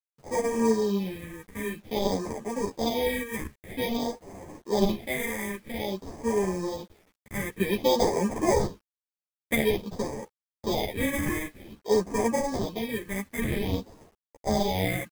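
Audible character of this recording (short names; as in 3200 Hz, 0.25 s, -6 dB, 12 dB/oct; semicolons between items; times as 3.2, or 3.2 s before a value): aliases and images of a low sample rate 1400 Hz, jitter 0%; phasing stages 4, 0.51 Hz, lowest notch 690–3700 Hz; a quantiser's noise floor 10-bit, dither none; a shimmering, thickened sound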